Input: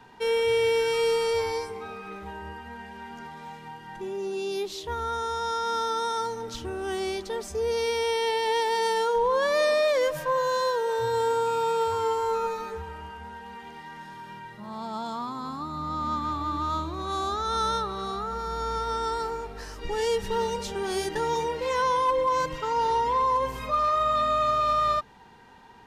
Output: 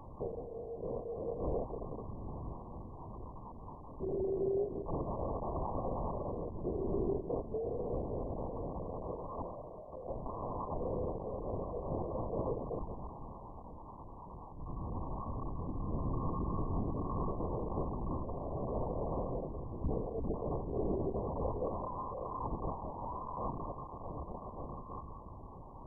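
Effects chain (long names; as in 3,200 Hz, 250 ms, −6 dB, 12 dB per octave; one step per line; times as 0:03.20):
linear delta modulator 32 kbit/s, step −37 dBFS
mains-hum notches 60/120/180/240/300/360/420/480/540 Hz
compressor whose output falls as the input rises −28 dBFS, ratio −0.5
phaser with its sweep stopped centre 1,800 Hz, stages 4
on a send: tape delay 189 ms, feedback 71%, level −14 dB, low-pass 2,500 Hz
on the sum: linear-prediction vocoder at 8 kHz whisper
level −2.5 dB
MP2 8 kbit/s 24,000 Hz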